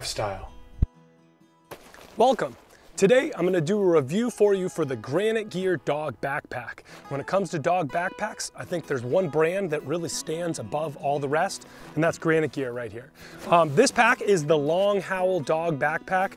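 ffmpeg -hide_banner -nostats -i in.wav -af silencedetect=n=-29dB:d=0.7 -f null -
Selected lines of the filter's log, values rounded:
silence_start: 0.84
silence_end: 1.72 | silence_duration: 0.88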